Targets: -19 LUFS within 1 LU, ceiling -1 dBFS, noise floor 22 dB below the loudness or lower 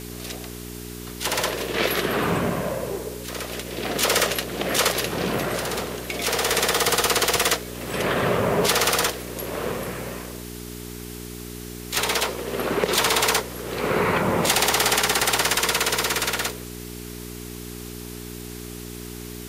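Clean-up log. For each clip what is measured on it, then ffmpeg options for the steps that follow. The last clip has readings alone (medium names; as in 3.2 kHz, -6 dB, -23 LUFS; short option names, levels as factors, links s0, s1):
hum 60 Hz; highest harmonic 420 Hz; hum level -34 dBFS; noise floor -36 dBFS; noise floor target -45 dBFS; loudness -22.5 LUFS; peak level -7.5 dBFS; loudness target -19.0 LUFS
-> -af "bandreject=f=60:t=h:w=4,bandreject=f=120:t=h:w=4,bandreject=f=180:t=h:w=4,bandreject=f=240:t=h:w=4,bandreject=f=300:t=h:w=4,bandreject=f=360:t=h:w=4,bandreject=f=420:t=h:w=4"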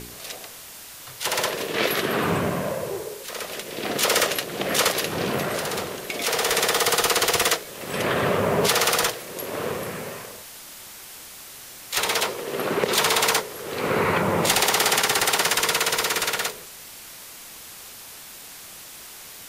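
hum not found; noise floor -42 dBFS; noise floor target -45 dBFS
-> -af "afftdn=nr=6:nf=-42"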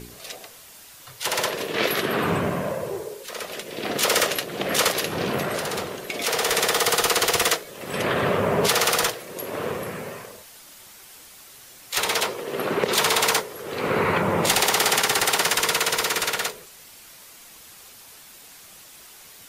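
noise floor -47 dBFS; loudness -22.5 LUFS; peak level -7.5 dBFS; loudness target -19.0 LUFS
-> -af "volume=1.5"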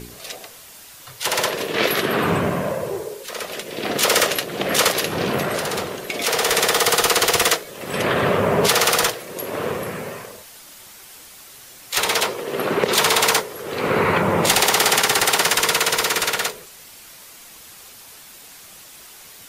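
loudness -19.0 LUFS; peak level -4.0 dBFS; noise floor -43 dBFS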